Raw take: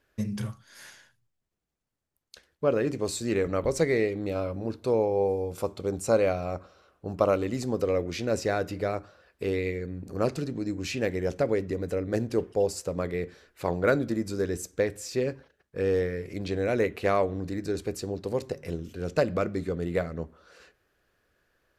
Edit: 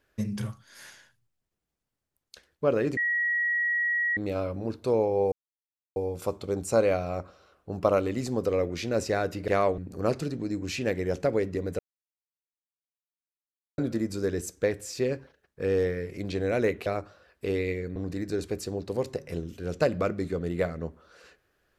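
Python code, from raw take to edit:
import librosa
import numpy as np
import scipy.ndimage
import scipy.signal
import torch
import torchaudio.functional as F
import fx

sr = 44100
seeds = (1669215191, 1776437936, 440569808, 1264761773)

y = fx.edit(x, sr, fx.bleep(start_s=2.97, length_s=1.2, hz=1910.0, db=-23.5),
    fx.insert_silence(at_s=5.32, length_s=0.64),
    fx.swap(start_s=8.84, length_s=1.1, other_s=17.02, other_length_s=0.3),
    fx.silence(start_s=11.95, length_s=1.99), tone=tone)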